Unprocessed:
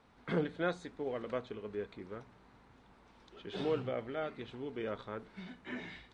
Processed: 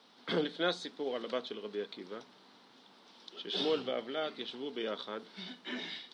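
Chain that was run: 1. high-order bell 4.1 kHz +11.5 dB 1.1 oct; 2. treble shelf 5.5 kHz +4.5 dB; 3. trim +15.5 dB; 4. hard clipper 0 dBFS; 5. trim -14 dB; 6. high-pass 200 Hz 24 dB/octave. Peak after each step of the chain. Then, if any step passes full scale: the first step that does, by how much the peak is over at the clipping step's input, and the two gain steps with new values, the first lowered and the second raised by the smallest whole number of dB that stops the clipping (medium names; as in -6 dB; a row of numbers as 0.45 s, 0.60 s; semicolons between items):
-20.5 dBFS, -20.0 dBFS, -4.5 dBFS, -4.5 dBFS, -18.5 dBFS, -17.5 dBFS; nothing clips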